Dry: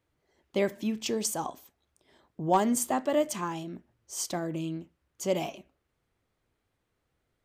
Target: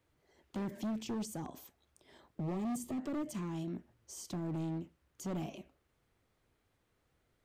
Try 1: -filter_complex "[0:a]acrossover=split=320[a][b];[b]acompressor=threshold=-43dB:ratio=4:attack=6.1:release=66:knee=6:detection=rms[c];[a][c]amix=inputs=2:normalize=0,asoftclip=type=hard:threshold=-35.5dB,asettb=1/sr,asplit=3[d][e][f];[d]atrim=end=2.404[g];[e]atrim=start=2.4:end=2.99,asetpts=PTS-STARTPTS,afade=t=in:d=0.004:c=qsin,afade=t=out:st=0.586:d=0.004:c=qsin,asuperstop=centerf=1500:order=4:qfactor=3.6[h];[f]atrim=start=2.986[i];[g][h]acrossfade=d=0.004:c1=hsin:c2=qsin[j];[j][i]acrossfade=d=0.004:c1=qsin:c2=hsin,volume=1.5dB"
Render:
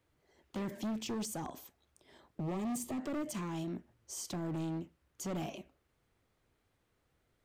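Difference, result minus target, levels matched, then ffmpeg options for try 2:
compressor: peak gain reduction -5 dB
-filter_complex "[0:a]acrossover=split=320[a][b];[b]acompressor=threshold=-50dB:ratio=4:attack=6.1:release=66:knee=6:detection=rms[c];[a][c]amix=inputs=2:normalize=0,asoftclip=type=hard:threshold=-35.5dB,asettb=1/sr,asplit=3[d][e][f];[d]atrim=end=2.404[g];[e]atrim=start=2.4:end=2.99,asetpts=PTS-STARTPTS,afade=t=in:d=0.004:c=qsin,afade=t=out:st=0.586:d=0.004:c=qsin,asuperstop=centerf=1500:order=4:qfactor=3.6[h];[f]atrim=start=2.986[i];[g][h]acrossfade=d=0.004:c1=hsin:c2=qsin[j];[j][i]acrossfade=d=0.004:c1=qsin:c2=hsin,volume=1.5dB"

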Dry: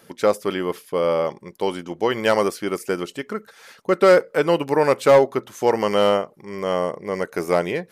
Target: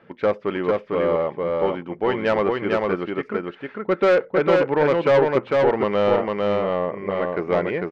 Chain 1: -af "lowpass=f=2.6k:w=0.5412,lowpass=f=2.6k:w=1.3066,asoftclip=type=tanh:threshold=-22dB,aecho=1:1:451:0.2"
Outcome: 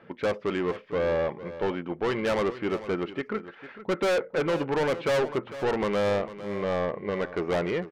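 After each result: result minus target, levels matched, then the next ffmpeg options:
echo-to-direct -11.5 dB; soft clip: distortion +9 dB
-af "lowpass=f=2.6k:w=0.5412,lowpass=f=2.6k:w=1.3066,asoftclip=type=tanh:threshold=-22dB,aecho=1:1:451:0.75"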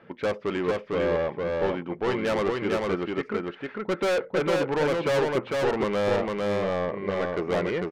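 soft clip: distortion +9 dB
-af "lowpass=f=2.6k:w=0.5412,lowpass=f=2.6k:w=1.3066,asoftclip=type=tanh:threshold=-11.5dB,aecho=1:1:451:0.75"

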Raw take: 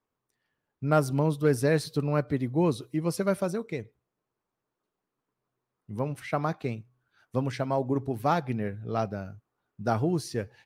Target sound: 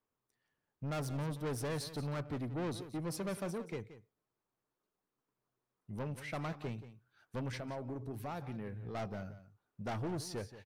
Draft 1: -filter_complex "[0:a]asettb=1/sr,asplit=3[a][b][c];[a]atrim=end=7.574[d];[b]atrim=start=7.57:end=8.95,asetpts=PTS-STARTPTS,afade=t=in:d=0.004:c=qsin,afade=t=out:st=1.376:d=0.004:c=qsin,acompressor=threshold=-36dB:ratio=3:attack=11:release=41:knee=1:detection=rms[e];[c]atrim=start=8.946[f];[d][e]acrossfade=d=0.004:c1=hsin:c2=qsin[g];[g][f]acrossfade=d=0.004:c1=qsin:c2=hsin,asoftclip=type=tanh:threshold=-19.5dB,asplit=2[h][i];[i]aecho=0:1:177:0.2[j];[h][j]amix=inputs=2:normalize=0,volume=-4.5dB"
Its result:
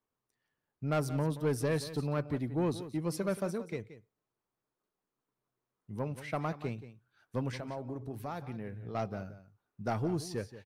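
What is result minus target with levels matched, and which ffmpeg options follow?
soft clip: distortion -9 dB
-filter_complex "[0:a]asettb=1/sr,asplit=3[a][b][c];[a]atrim=end=7.574[d];[b]atrim=start=7.57:end=8.95,asetpts=PTS-STARTPTS,afade=t=in:d=0.004:c=qsin,afade=t=out:st=1.376:d=0.004:c=qsin,acompressor=threshold=-36dB:ratio=3:attack=11:release=41:knee=1:detection=rms[e];[c]atrim=start=8.946[f];[d][e]acrossfade=d=0.004:c1=hsin:c2=qsin[g];[g][f]acrossfade=d=0.004:c1=qsin:c2=hsin,asoftclip=type=tanh:threshold=-30.5dB,asplit=2[h][i];[i]aecho=0:1:177:0.2[j];[h][j]amix=inputs=2:normalize=0,volume=-4.5dB"

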